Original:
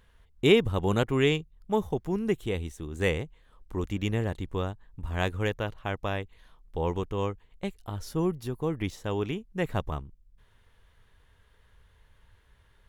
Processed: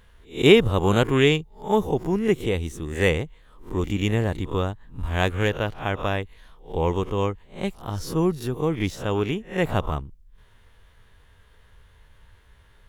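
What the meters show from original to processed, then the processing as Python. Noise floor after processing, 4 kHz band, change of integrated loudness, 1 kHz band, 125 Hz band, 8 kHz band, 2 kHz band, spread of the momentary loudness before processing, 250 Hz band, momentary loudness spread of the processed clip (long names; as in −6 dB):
−55 dBFS, +6.5 dB, +6.0 dB, +6.5 dB, +5.5 dB, +7.0 dB, +6.5 dB, 13 LU, +6.0 dB, 13 LU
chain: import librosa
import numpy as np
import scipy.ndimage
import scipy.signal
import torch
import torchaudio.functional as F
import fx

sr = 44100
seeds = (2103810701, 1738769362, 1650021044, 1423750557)

y = fx.spec_swells(x, sr, rise_s=0.3)
y = fx.attack_slew(y, sr, db_per_s=270.0)
y = F.gain(torch.from_numpy(y), 5.5).numpy()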